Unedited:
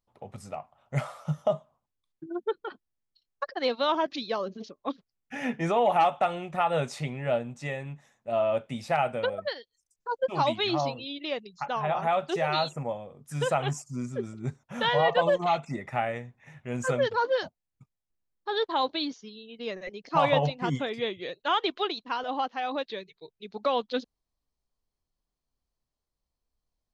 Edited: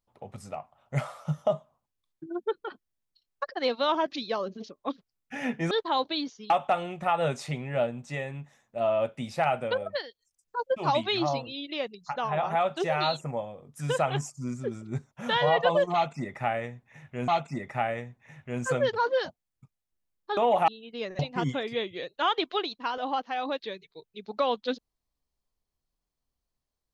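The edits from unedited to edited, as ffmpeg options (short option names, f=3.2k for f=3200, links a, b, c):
-filter_complex "[0:a]asplit=7[a][b][c][d][e][f][g];[a]atrim=end=5.712[h];[b]atrim=start=18.548:end=19.342[i];[c]atrim=start=6.018:end=16.802[j];[d]atrim=start=15.458:end=18.552[k];[e]atrim=start=5.708:end=6.022[l];[f]atrim=start=19.338:end=19.852[m];[g]atrim=start=20.448[n];[h][i]acrossfade=d=0.004:c1=hsin:c2=hsin[o];[o][j]acrossfade=d=0.004:c1=hsin:c2=hsin[p];[p][k]acrossfade=d=0.004:c1=hsin:c2=hsin[q];[q][l]acrossfade=d=0.004:c1=hsin:c2=hsin[r];[r][m]acrossfade=d=0.004:c1=hsin:c2=hsin[s];[s][n]acrossfade=d=0.004:c1=hsin:c2=hsin"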